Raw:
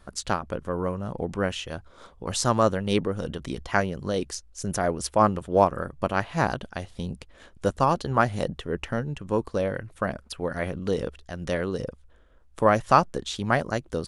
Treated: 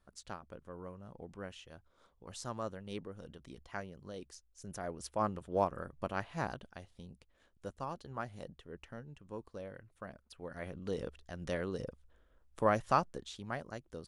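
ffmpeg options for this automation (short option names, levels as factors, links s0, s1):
-af "volume=0.794,afade=t=in:st=4.5:d=1.05:silence=0.446684,afade=t=out:st=6.24:d=0.84:silence=0.421697,afade=t=in:st=10.26:d=0.97:silence=0.316228,afade=t=out:st=12.73:d=0.73:silence=0.421697"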